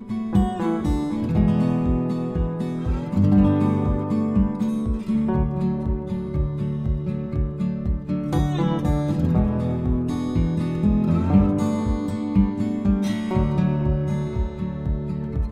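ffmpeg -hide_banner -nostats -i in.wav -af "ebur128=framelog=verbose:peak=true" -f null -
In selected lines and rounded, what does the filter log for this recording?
Integrated loudness:
  I:         -22.8 LUFS
  Threshold: -32.8 LUFS
Loudness range:
  LRA:         3.4 LU
  Threshold: -42.6 LUFS
  LRA low:   -24.9 LUFS
  LRA high:  -21.5 LUFS
True peak:
  Peak:       -4.1 dBFS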